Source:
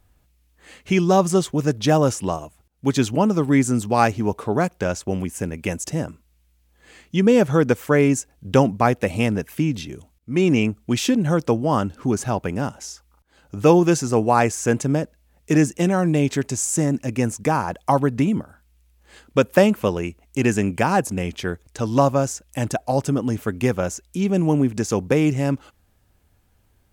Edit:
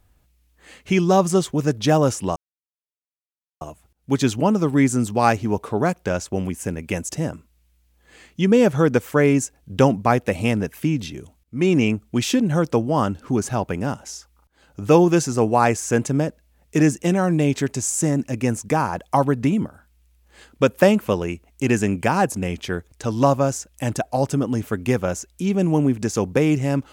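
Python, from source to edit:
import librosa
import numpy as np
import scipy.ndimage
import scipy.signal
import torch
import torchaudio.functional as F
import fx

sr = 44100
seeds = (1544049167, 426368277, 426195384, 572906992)

y = fx.edit(x, sr, fx.insert_silence(at_s=2.36, length_s=1.25), tone=tone)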